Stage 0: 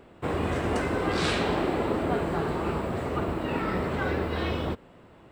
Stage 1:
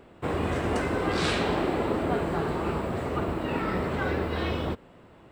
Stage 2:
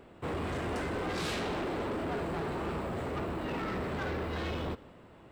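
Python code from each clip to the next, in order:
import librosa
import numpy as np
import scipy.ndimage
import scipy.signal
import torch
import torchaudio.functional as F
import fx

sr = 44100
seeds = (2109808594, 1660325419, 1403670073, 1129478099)

y1 = x
y2 = 10.0 ** (-29.0 / 20.0) * np.tanh(y1 / 10.0 ** (-29.0 / 20.0))
y2 = y2 + 10.0 ** (-22.0 / 20.0) * np.pad(y2, (int(179 * sr / 1000.0), 0))[:len(y2)]
y2 = y2 * 10.0 ** (-2.0 / 20.0)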